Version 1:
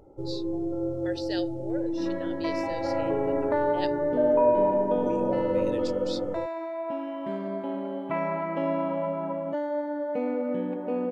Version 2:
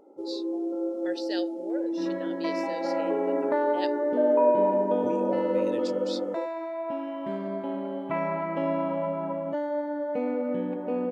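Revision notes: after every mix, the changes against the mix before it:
first sound: add linear-phase brick-wall high-pass 210 Hz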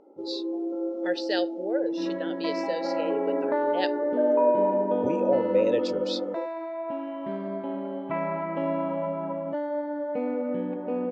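speech +8.5 dB
master: add high-frequency loss of the air 120 metres

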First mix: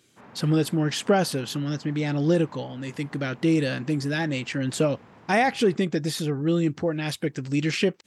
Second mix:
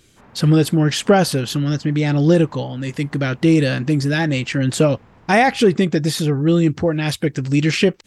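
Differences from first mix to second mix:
speech +7.0 dB
master: remove high-pass filter 140 Hz 12 dB per octave

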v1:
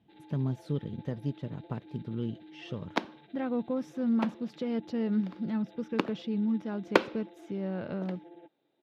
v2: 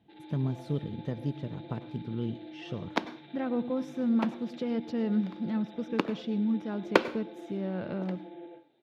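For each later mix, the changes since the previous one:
reverb: on, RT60 0.35 s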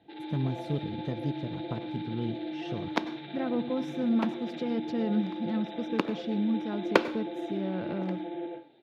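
first sound +9.0 dB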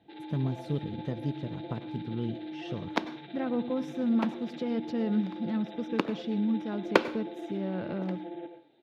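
first sound: send −9.0 dB

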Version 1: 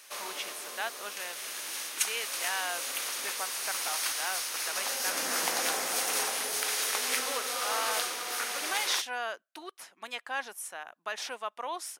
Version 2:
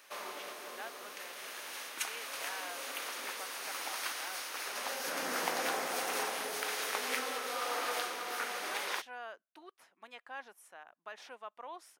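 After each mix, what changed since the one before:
speech −9.0 dB
master: add parametric band 8,900 Hz −11 dB 2.5 octaves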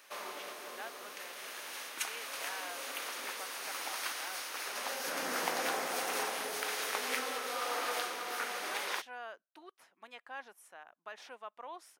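nothing changed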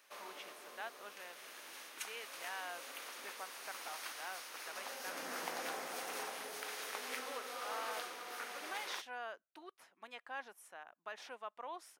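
background −8.0 dB

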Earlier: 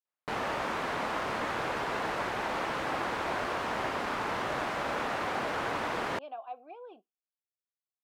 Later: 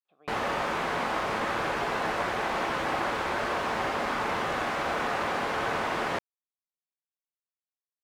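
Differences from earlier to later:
speech: entry −1.45 s
reverb: on

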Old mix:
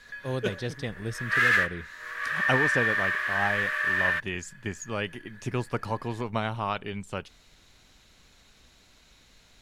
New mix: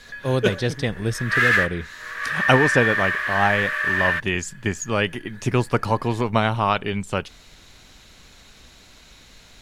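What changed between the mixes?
speech +9.5 dB
background +4.0 dB

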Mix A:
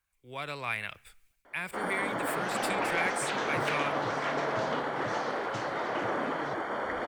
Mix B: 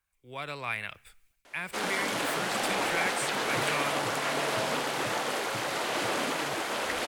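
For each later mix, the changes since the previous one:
first sound: remove Savitzky-Golay smoothing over 41 samples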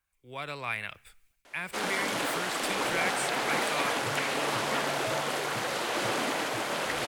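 second sound: entry +0.50 s

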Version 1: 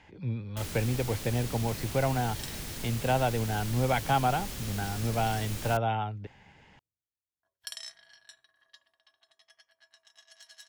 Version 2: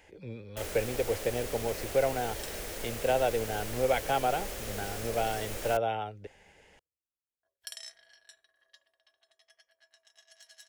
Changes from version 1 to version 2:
speech: remove high-frequency loss of the air 92 metres
first sound: add parametric band 940 Hz +8 dB 2.4 octaves
master: add graphic EQ with 10 bands 125 Hz −12 dB, 250 Hz −6 dB, 500 Hz +8 dB, 1,000 Hz −8 dB, 4,000 Hz −4 dB

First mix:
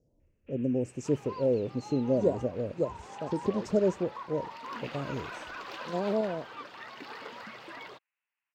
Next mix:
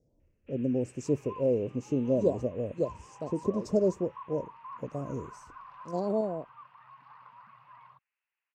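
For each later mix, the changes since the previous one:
second sound: add pair of resonant band-passes 370 Hz, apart 3 octaves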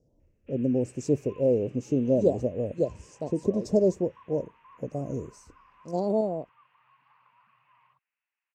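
speech +3.5 dB
second sound −10.5 dB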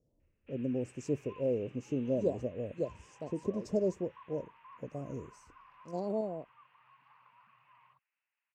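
speech −8.5 dB

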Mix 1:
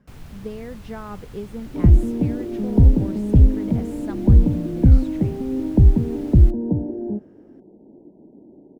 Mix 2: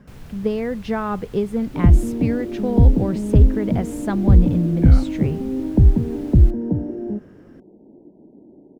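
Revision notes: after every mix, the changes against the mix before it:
speech +11.0 dB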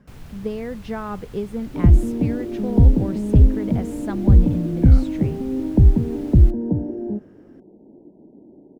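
speech −5.5 dB

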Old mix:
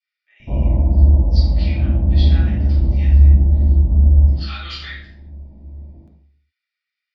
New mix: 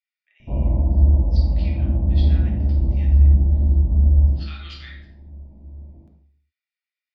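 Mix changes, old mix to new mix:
speech: send −11.0 dB
background −3.5 dB

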